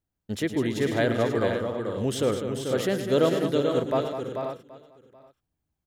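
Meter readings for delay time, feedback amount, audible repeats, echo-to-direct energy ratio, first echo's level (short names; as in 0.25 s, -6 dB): 0.109 s, no steady repeat, 11, -2.0 dB, -11.0 dB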